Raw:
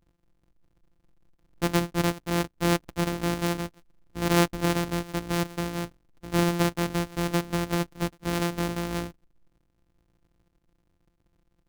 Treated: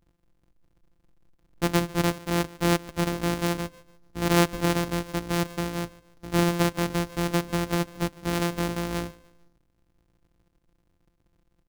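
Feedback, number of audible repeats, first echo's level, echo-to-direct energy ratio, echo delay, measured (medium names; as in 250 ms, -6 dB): 42%, 2, -21.5 dB, -20.5 dB, 147 ms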